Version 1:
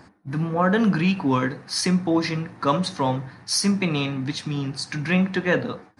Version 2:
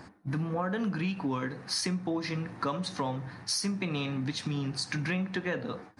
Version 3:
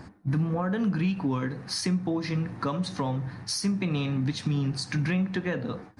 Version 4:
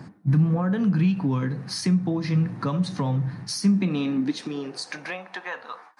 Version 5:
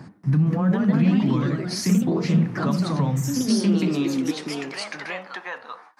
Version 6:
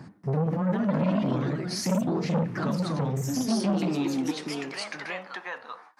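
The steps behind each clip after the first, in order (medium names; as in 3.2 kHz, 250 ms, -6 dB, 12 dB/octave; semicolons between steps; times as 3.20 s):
compression, threshold -29 dBFS, peak gain reduction 13.5 dB
bass shelf 230 Hz +9.5 dB
high-pass sweep 140 Hz -> 1 kHz, 3.41–5.64 s
ever faster or slower copies 235 ms, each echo +2 st, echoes 3
transformer saturation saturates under 590 Hz; trim -3 dB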